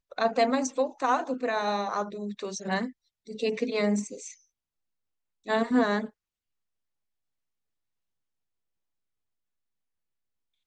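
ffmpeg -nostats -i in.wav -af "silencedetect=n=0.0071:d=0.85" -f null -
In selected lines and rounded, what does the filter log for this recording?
silence_start: 4.34
silence_end: 5.46 | silence_duration: 1.13
silence_start: 6.09
silence_end: 10.66 | silence_duration: 4.57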